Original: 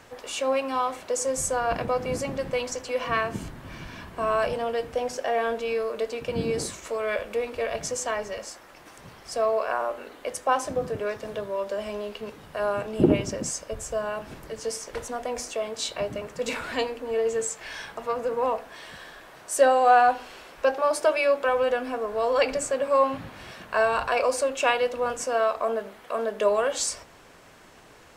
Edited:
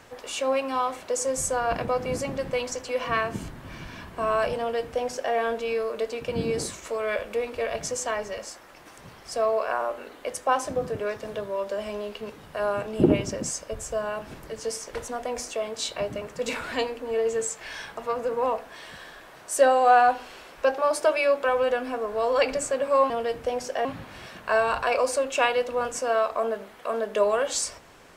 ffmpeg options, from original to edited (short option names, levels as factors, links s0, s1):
-filter_complex "[0:a]asplit=3[s0][s1][s2];[s0]atrim=end=23.102[s3];[s1]atrim=start=4.588:end=5.342[s4];[s2]atrim=start=23.098[s5];[s3][s4]acrossfade=d=0.004:c1=hsin:c2=hsin[s6];[s6][s5]acrossfade=d=0.004:c1=hsin:c2=hsin"